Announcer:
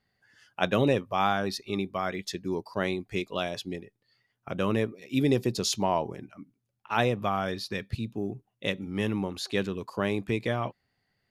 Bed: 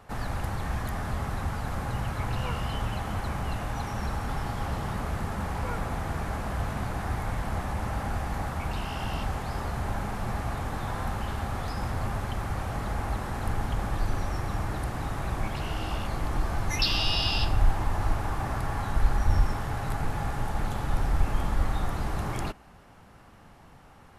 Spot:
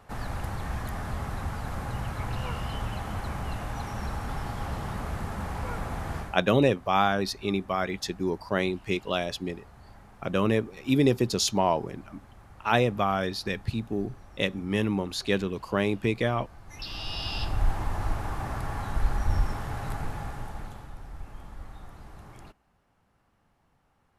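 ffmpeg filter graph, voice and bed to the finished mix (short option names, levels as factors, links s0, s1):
-filter_complex "[0:a]adelay=5750,volume=1.33[s0];[1:a]volume=5.96,afade=t=out:st=6.16:d=0.23:silence=0.125893,afade=t=in:st=16.65:d=1.06:silence=0.133352,afade=t=out:st=19.88:d=1.06:silence=0.199526[s1];[s0][s1]amix=inputs=2:normalize=0"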